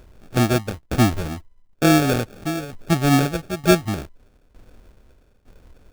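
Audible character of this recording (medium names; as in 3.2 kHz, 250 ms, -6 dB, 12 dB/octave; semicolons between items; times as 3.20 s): a quantiser's noise floor 12-bit, dither none; tremolo saw down 1.1 Hz, depth 85%; aliases and images of a low sample rate 1 kHz, jitter 0%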